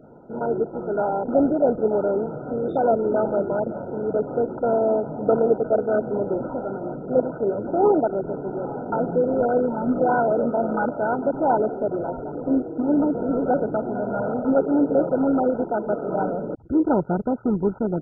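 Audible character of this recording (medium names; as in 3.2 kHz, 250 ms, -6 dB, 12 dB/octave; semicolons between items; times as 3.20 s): a buzz of ramps at a fixed pitch in blocks of 8 samples; MP2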